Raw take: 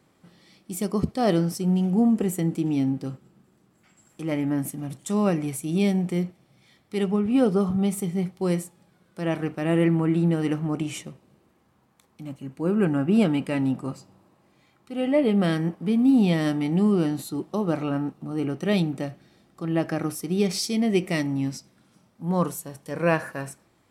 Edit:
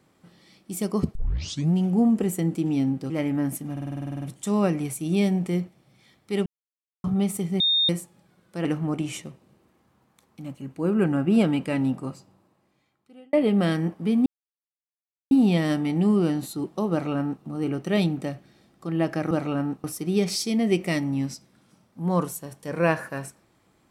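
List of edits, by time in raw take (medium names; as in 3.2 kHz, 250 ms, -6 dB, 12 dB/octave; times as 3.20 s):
1.15 s: tape start 0.59 s
3.10–4.23 s: delete
4.85 s: stutter 0.05 s, 11 plays
7.09–7.67 s: mute
8.23–8.52 s: bleep 3.67 kHz -18 dBFS
9.28–10.46 s: delete
13.68–15.14 s: fade out
16.07 s: insert silence 1.05 s
17.67–18.20 s: copy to 20.07 s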